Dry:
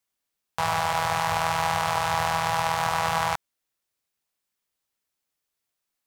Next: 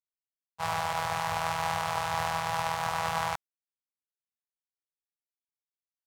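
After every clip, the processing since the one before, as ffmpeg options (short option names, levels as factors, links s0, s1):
-af "agate=range=0.0224:threshold=0.0891:ratio=3:detection=peak,volume=0.668"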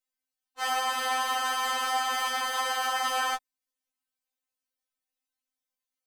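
-af "afftfilt=real='re*3.46*eq(mod(b,12),0)':imag='im*3.46*eq(mod(b,12),0)':win_size=2048:overlap=0.75,volume=2.51"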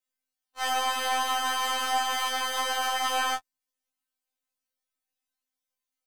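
-af "aeval=exprs='if(lt(val(0),0),0.708*val(0),val(0))':c=same,afftfilt=real='re*2*eq(mod(b,4),0)':imag='im*2*eq(mod(b,4),0)':win_size=2048:overlap=0.75"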